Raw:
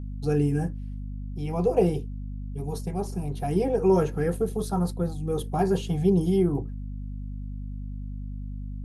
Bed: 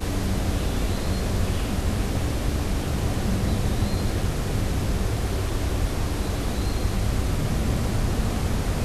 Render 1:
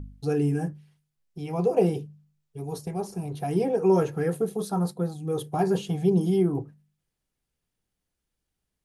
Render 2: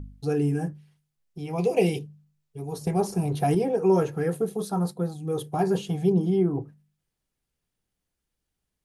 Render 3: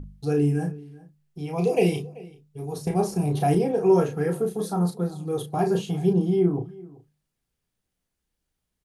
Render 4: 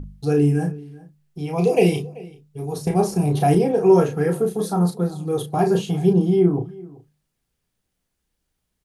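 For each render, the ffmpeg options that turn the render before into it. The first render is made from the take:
-af "bandreject=f=50:t=h:w=4,bandreject=f=100:t=h:w=4,bandreject=f=150:t=h:w=4,bandreject=f=200:t=h:w=4,bandreject=f=250:t=h:w=4"
-filter_complex "[0:a]asettb=1/sr,asplit=3[a][b][c];[a]atrim=end=1.584[d];[b]atrim=start=1.58:end=1.99,asetpts=PTS-STARTPTS,afade=t=in:d=0.004:c=qsin,afade=t=out:st=0.406:d=0.004:c=qsin,highshelf=f=1.8k:t=q:w=3:g=7[e];[c]atrim=start=1.986[f];[d][e]acrossfade=d=0.004:c1=hsin:c2=qsin[g];[g][f]acrossfade=d=0.004:c1=qsin:c2=hsin,asettb=1/sr,asplit=3[h][i][j];[h]atrim=end=2.814[k];[i]atrim=start=2.81:end=3.55,asetpts=PTS-STARTPTS,afade=t=in:d=0.004:c=qsin,afade=t=out:st=0.736:d=0.004:c=qsin,acontrast=72[l];[j]atrim=start=3.546[m];[k][l]acrossfade=d=0.004:c1=hsin:c2=qsin[n];[n][m]acrossfade=d=0.004:c1=qsin:c2=hsin,asettb=1/sr,asplit=3[o][p][q];[o]atrim=end=6.124[r];[p]atrim=start=6.12:end=6.62,asetpts=PTS-STARTPTS,afade=t=in:d=0.004:c=qsin,afade=t=out:st=0.496:d=0.004:c=qsin,lowpass=f=2.5k:p=1[s];[q]atrim=start=6.616[t];[r][s]acrossfade=d=0.004:c1=hsin:c2=qsin[u];[u][t]acrossfade=d=0.004:c1=qsin:c2=hsin"
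-filter_complex "[0:a]asplit=2[a][b];[b]adelay=34,volume=-6dB[c];[a][c]amix=inputs=2:normalize=0,asplit=2[d][e];[e]adelay=384.8,volume=-21dB,highshelf=f=4k:g=-8.66[f];[d][f]amix=inputs=2:normalize=0"
-af "volume=4.5dB"

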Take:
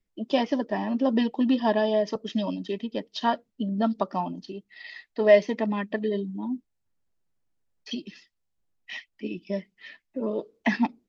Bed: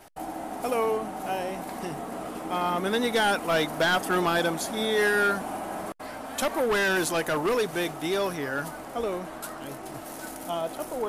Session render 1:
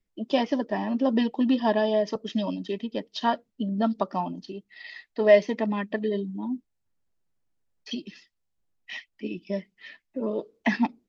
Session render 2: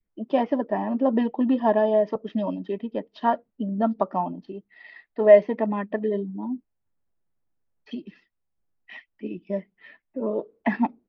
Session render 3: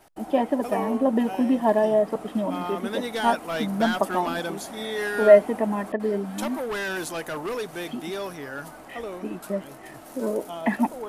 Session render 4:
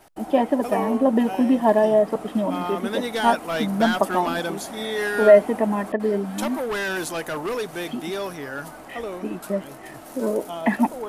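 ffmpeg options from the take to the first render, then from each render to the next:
-af anull
-af "lowpass=1.8k,adynamicequalizer=threshold=0.02:dfrequency=680:dqfactor=0.84:tfrequency=680:tqfactor=0.84:attack=5:release=100:ratio=0.375:range=2:mode=boostabove:tftype=bell"
-filter_complex "[1:a]volume=-5dB[a];[0:a][a]amix=inputs=2:normalize=0"
-af "volume=3dB,alimiter=limit=-3dB:level=0:latency=1"

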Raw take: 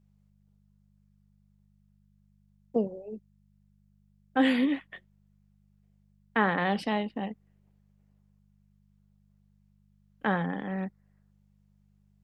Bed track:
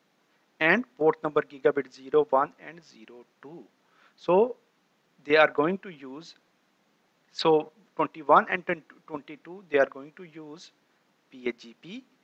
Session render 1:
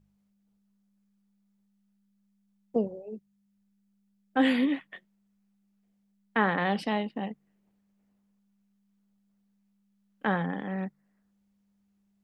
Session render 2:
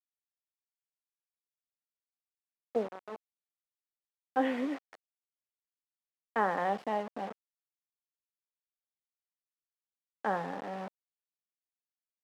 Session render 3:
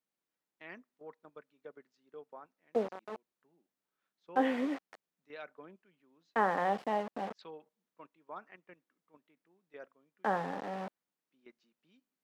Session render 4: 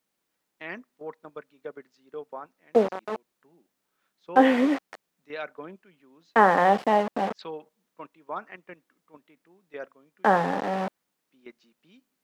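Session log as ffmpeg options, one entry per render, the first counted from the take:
-af "bandreject=f=50:t=h:w=4,bandreject=f=100:t=h:w=4,bandreject=f=150:t=h:w=4"
-af "acrusher=bits=5:mix=0:aa=0.000001,bandpass=f=710:t=q:w=1.1:csg=0"
-filter_complex "[1:a]volume=-27.5dB[a];[0:a][a]amix=inputs=2:normalize=0"
-af "volume=11.5dB"

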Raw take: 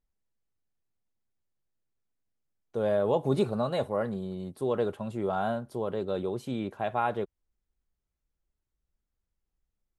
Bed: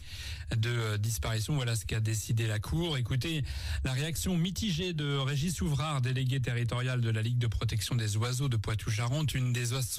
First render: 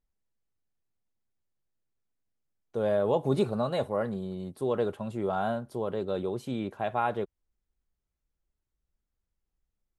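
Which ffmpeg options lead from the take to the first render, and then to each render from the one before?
-af anull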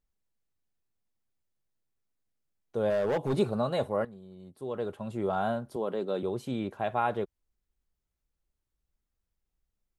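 -filter_complex "[0:a]asettb=1/sr,asplit=3[a][b][c];[a]atrim=end=2.904[d];[b]atrim=start=2.9:end=3.38,asetpts=PTS-STARTPTS,afade=t=in:d=0.004:c=qsin,afade=t=out:st=0.476:d=0.004:c=qsin,volume=23.5dB,asoftclip=hard,volume=-23.5dB[e];[c]atrim=start=3.376[f];[d][e]acrossfade=d=0.004:c1=hsin:c2=qsin[g];[g][f]acrossfade=d=0.004:c1=qsin:c2=hsin,asettb=1/sr,asplit=3[h][i][j];[h]atrim=end=5.764[k];[i]atrim=start=5.76:end=6.23,asetpts=PTS-STARTPTS,afade=t=in:d=0.004:c=qsin,afade=t=out:st=0.466:d=0.004:c=qsin,highpass=f=170:w=0.5412,highpass=f=170:w=1.3066[l];[j]atrim=start=6.226[m];[k][l]acrossfade=d=0.004:c1=hsin:c2=qsin[n];[n][m]acrossfade=d=0.004:c1=qsin:c2=hsin,asplit=2[o][p];[o]atrim=end=4.05,asetpts=PTS-STARTPTS,afade=t=out:st=4.046:d=0.004:c=hsin:silence=0.188365[q];[p]atrim=start=4.05,asetpts=PTS-STARTPTS,afade=t=in:d=1.15:c=qua:silence=0.188365[r];[q][r]concat=n=2:v=0:a=1"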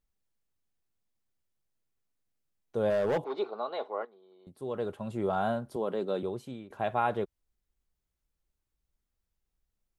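-filter_complex "[0:a]asettb=1/sr,asplit=3[a][b][c];[a]atrim=end=3.244[d];[b]atrim=start=3.24:end=4.47,asetpts=PTS-STARTPTS,afade=t=in:d=0.004:c=qsin,afade=t=out:st=1.226:d=0.004:c=qsin,highpass=f=400:w=0.5412,highpass=f=400:w=1.3066,equalizer=f=560:t=q:w=4:g=-9,equalizer=f=1.7k:t=q:w=4:g=-8,equalizer=f=2.7k:t=q:w=4:g=-8,lowpass=f=3.8k:w=0.5412,lowpass=f=3.8k:w=1.3066[e];[c]atrim=start=4.466[f];[d][e]acrossfade=d=0.004:c1=hsin:c2=qsin[g];[g][f]acrossfade=d=0.004:c1=qsin:c2=hsin,asplit=2[h][i];[h]atrim=end=6.7,asetpts=PTS-STARTPTS,afade=t=out:st=6.13:d=0.57:silence=0.112202[j];[i]atrim=start=6.7,asetpts=PTS-STARTPTS,afade=t=in:d=0.004:c=hsin:silence=0.112202[k];[j][k]concat=n=2:v=0:a=1"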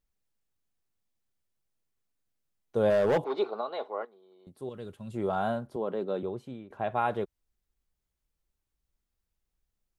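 -filter_complex "[0:a]asettb=1/sr,asplit=3[a][b][c];[a]atrim=end=4.694[d];[b]atrim=start=4.69:end=5.14,asetpts=PTS-STARTPTS,afade=t=in:d=0.004:c=qsin,afade=t=out:st=0.446:d=0.004:c=qsin,equalizer=f=770:w=0.53:g=-13.5[e];[c]atrim=start=5.136[f];[d][e]acrossfade=d=0.004:c1=hsin:c2=qsin[g];[g][f]acrossfade=d=0.004:c1=qsin:c2=hsin,asettb=1/sr,asplit=3[h][i][j];[h]atrim=end=5.674[k];[i]atrim=start=5.67:end=6.95,asetpts=PTS-STARTPTS,afade=t=in:d=0.004:c=qsin,afade=t=out:st=1.276:d=0.004:c=qsin,highshelf=f=3.9k:g=-10.5[l];[j]atrim=start=6.946[m];[k][l]acrossfade=d=0.004:c1=hsin:c2=qsin[n];[n][m]acrossfade=d=0.004:c1=qsin:c2=hsin,asplit=3[o][p][q];[o]atrim=end=2.762[r];[p]atrim=start=2.758:end=3.612,asetpts=PTS-STARTPTS,volume=3.5dB[s];[q]atrim=start=3.608[t];[r][s]acrossfade=d=0.004:c1=hsin:c2=hsin[u];[u][t]acrossfade=d=0.004:c1=hsin:c2=hsin"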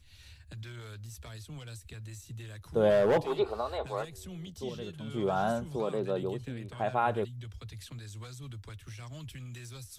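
-filter_complex "[1:a]volume=-13.5dB[a];[0:a][a]amix=inputs=2:normalize=0"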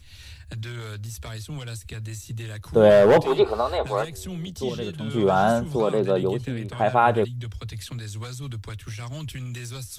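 -af "volume=10dB"

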